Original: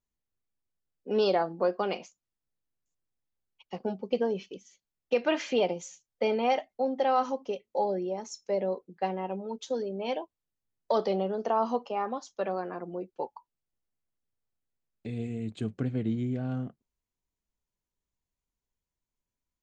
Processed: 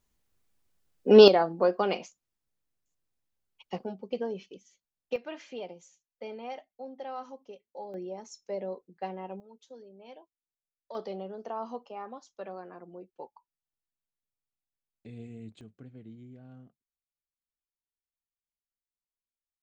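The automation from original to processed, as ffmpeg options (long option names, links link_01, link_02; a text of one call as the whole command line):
ffmpeg -i in.wav -af "asetnsamples=nb_out_samples=441:pad=0,asendcmd='1.28 volume volume 2.5dB;3.84 volume volume -5dB;5.16 volume volume -13.5dB;7.94 volume volume -6dB;9.4 volume volume -17.5dB;10.95 volume volume -9.5dB;15.61 volume volume -18dB',volume=12dB" out.wav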